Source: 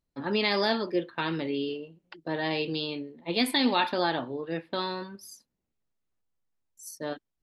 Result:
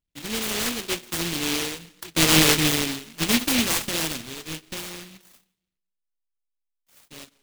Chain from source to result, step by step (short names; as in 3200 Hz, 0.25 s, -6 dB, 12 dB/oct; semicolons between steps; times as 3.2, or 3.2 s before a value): half-waves squared off; Doppler pass-by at 2.34, 17 m/s, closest 6.6 m; on a send at -22.5 dB: reverb RT60 0.95 s, pre-delay 90 ms; on the sum: noise-modulated delay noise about 2900 Hz, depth 0.42 ms; gain +8 dB